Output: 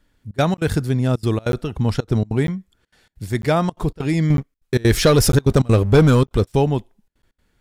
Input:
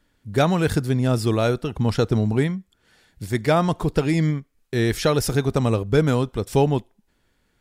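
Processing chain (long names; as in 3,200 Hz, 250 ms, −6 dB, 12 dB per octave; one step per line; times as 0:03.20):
low-shelf EQ 100 Hz +6 dB
0:04.30–0:06.52: leveller curve on the samples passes 2
gate pattern "xxxx.xx.xxx" 195 BPM −24 dB
regular buffer underruns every 0.95 s, samples 512, zero, from 0:00.57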